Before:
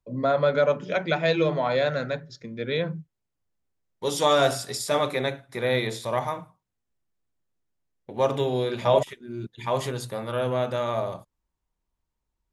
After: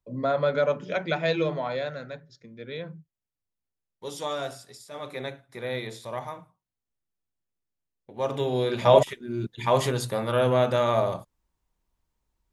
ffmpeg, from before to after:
ffmpeg -i in.wav -af "volume=20dB,afade=type=out:start_time=1.35:duration=0.62:silence=0.446684,afade=type=out:start_time=4.12:duration=0.79:silence=0.354813,afade=type=in:start_time=4.91:duration=0.3:silence=0.281838,afade=type=in:start_time=8.15:duration=0.87:silence=0.266073" out.wav

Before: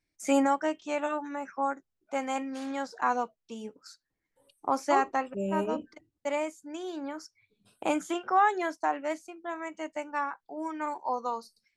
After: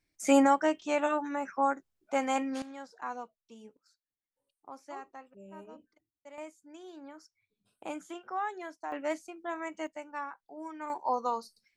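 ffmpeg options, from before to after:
ffmpeg -i in.wav -af "asetnsamples=nb_out_samples=441:pad=0,asendcmd='2.62 volume volume -11dB;3.77 volume volume -19dB;6.38 volume volume -11dB;8.92 volume volume -0.5dB;9.87 volume volume -7dB;10.9 volume volume 1dB',volume=2dB" out.wav

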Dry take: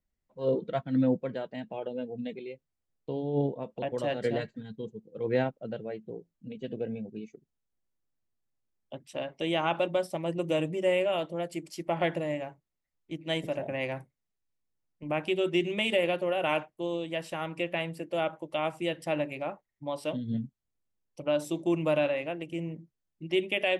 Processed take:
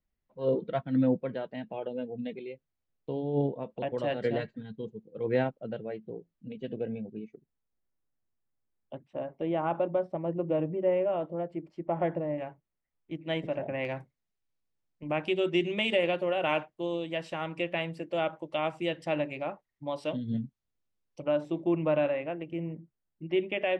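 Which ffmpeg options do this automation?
ffmpeg -i in.wav -af "asetnsamples=nb_out_samples=441:pad=0,asendcmd='7.14 lowpass f 2000;9.04 lowpass f 1100;12.38 lowpass f 2600;13.85 lowpass f 5500;21.28 lowpass f 2100',lowpass=3800" out.wav

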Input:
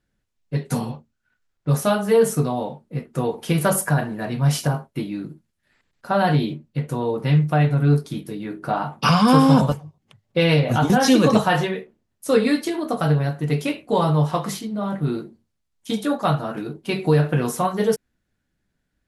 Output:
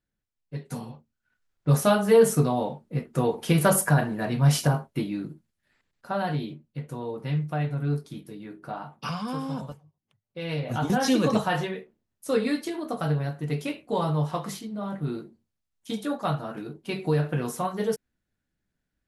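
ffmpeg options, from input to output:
ffmpeg -i in.wav -af "volume=10dB,afade=type=in:start_time=0.91:duration=0.79:silence=0.316228,afade=type=out:start_time=4.91:duration=1.38:silence=0.354813,afade=type=out:start_time=8.4:duration=0.94:silence=0.398107,afade=type=in:start_time=10.38:duration=0.54:silence=0.281838" out.wav

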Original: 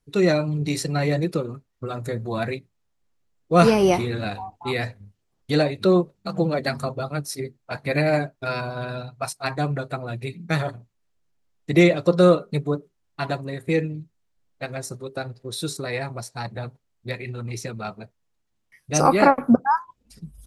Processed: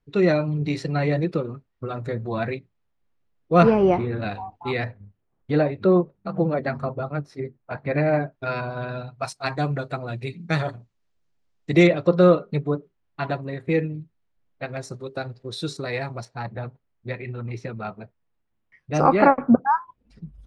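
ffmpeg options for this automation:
ffmpeg -i in.wav -af "asetnsamples=nb_out_samples=441:pad=0,asendcmd='3.63 lowpass f 1600;4.22 lowpass f 3300;4.84 lowpass f 1800;8.32 lowpass f 3000;9.19 lowpass f 6100;11.87 lowpass f 3000;14.77 lowpass f 5100;16.25 lowpass f 2400',lowpass=3200" out.wav

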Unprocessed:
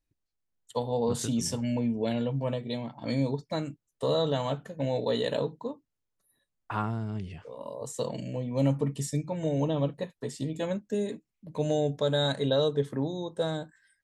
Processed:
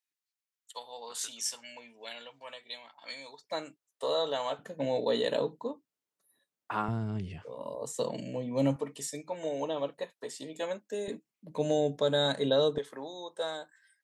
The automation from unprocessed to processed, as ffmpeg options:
ffmpeg -i in.wav -af "asetnsamples=nb_out_samples=441:pad=0,asendcmd='3.44 highpass f 540;4.59 highpass f 230;6.88 highpass f 60;7.75 highpass f 190;8.76 highpass f 480;11.08 highpass f 200;12.78 highpass f 640',highpass=1400" out.wav

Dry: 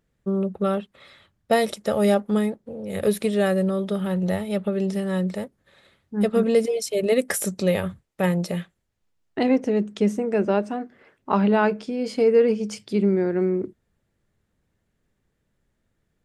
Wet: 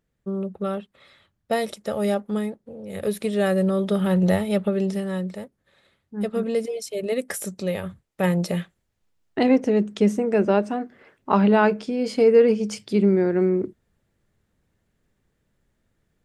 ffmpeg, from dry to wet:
ffmpeg -i in.wav -af "volume=12dB,afade=type=in:start_time=3.13:duration=1.1:silence=0.354813,afade=type=out:start_time=4.23:duration=1.06:silence=0.316228,afade=type=in:start_time=7.8:duration=0.67:silence=0.446684" out.wav

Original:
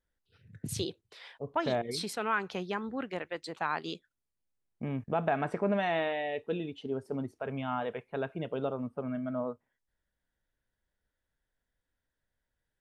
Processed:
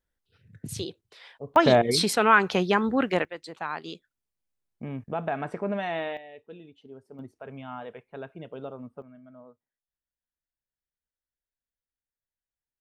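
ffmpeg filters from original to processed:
ffmpeg -i in.wav -af "asetnsamples=nb_out_samples=441:pad=0,asendcmd='1.56 volume volume 12dB;3.25 volume volume -0.5dB;6.17 volume volume -11.5dB;7.19 volume volume -5dB;9.02 volume volume -15.5dB',volume=0.5dB" out.wav

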